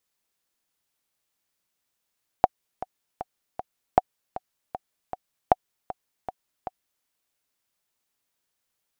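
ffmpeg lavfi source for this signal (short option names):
-f lavfi -i "aevalsrc='pow(10,(-2-16*gte(mod(t,4*60/156),60/156))/20)*sin(2*PI*745*mod(t,60/156))*exp(-6.91*mod(t,60/156)/0.03)':d=4.61:s=44100"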